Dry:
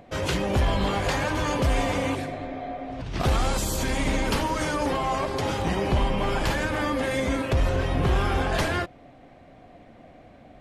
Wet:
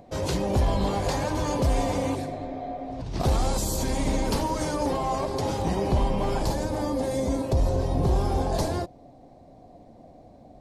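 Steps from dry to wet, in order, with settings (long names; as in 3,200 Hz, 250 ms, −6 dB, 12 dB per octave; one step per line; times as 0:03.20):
flat-topped bell 2,000 Hz −8.5 dB, from 0:06.42 −15 dB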